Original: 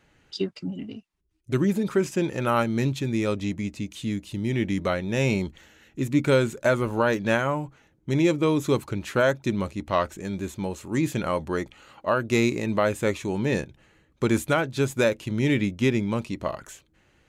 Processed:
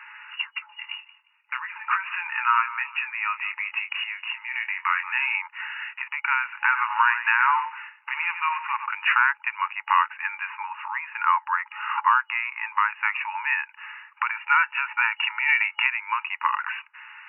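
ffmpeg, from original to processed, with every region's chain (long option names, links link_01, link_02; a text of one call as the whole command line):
ffmpeg -i in.wav -filter_complex "[0:a]asettb=1/sr,asplit=3[link_01][link_02][link_03];[link_01]atrim=end=0.764[link_04];[link_02]atrim=start=0.76:end=5.35,asetpts=PTS-STARTPTS,afade=type=in:duration=0.004:curve=qsin,afade=type=out:start_time=4.586:duration=0.004:curve=qsin,acompressor=threshold=-36dB:ratio=2:attack=3.2:release=140:knee=1:detection=peak,asplit=2[link_05][link_06];[link_06]adelay=24,volume=-8dB[link_07];[link_05][link_07]amix=inputs=2:normalize=0,atrim=end_sample=202419,asplit=2[link_08][link_09];[link_09]adelay=177,lowpass=frequency=2600:poles=1,volume=-16.5dB,asplit=2[link_10][link_11];[link_11]adelay=177,lowpass=frequency=2600:poles=1,volume=0.35,asplit=2[link_12][link_13];[link_13]adelay=177,lowpass=frequency=2600:poles=1,volume=0.35[link_14];[link_08][link_10][link_12][link_14]amix=inputs=4:normalize=0,atrim=end_sample=202419[link_15];[link_03]atrim=start=5.346[link_16];[link_04][link_15]acrossfade=duration=0.004:curve1=hsin:curve2=qsin[link_17];[link_17][link_16]acrossfade=duration=0.004:curve1=qsin:curve2=hsin,asettb=1/sr,asplit=3[link_18][link_19][link_20];[link_18]atrim=end=6.434[link_21];[link_19]atrim=start=6.43:end=8.9,asetpts=PTS-STARTPTS,afade=type=in:duration=0.004:curve=qsin,afade=type=out:start_time=2.466:duration=0.004:curve=qsin,acrusher=bits=4:mode=log:mix=0:aa=0.000001,aecho=1:1:93:0.237,atrim=end_sample=108927[link_22];[link_20]atrim=start=8.896[link_23];[link_21][link_22]acrossfade=duration=0.004:curve1=hsin:curve2=qsin[link_24];[link_24][link_23]acrossfade=duration=0.004:curve1=qsin:curve2=hsin,asettb=1/sr,asplit=3[link_25][link_26][link_27];[link_25]atrim=end=10.484[link_28];[link_26]atrim=start=10.48:end=12.92,asetpts=PTS-STARTPTS,afade=type=in:duration=0.004:curve=qsin,afade=type=out:start_time=2.436:duration=0.004:curve=qsin,lowpass=frequency=1100:poles=1,acontrast=79[link_29];[link_27]atrim=start=12.916[link_30];[link_28][link_29]acrossfade=duration=0.004:curve1=hsin:curve2=qsin[link_31];[link_31][link_30]acrossfade=duration=0.004:curve1=qsin:curve2=hsin,asettb=1/sr,asplit=3[link_32][link_33][link_34];[link_32]atrim=end=14.314[link_35];[link_33]atrim=start=14.31:end=15.86,asetpts=PTS-STARTPTS,afade=type=in:duration=0.004:curve=qsin,afade=type=out:start_time=1.546:duration=0.004:curve=qsin,acompressor=threshold=-25dB:ratio=4:attack=3.2:release=140:knee=1:detection=peak,lowshelf=frequency=380:gain=-7,aecho=1:1:2.2:0.44,atrim=end_sample=68355[link_36];[link_34]atrim=start=15.856[link_37];[link_35][link_36]acrossfade=duration=0.004:curve1=hsin:curve2=qsin[link_38];[link_38][link_37]acrossfade=duration=0.004:curve1=qsin:curve2=hsin,acompressor=threshold=-35dB:ratio=5,afftfilt=real='re*between(b*sr/4096,840,2900)':imag='im*between(b*sr/4096,840,2900)':win_size=4096:overlap=0.75,alimiter=level_in=30dB:limit=-1dB:release=50:level=0:latency=1,volume=-6.5dB" out.wav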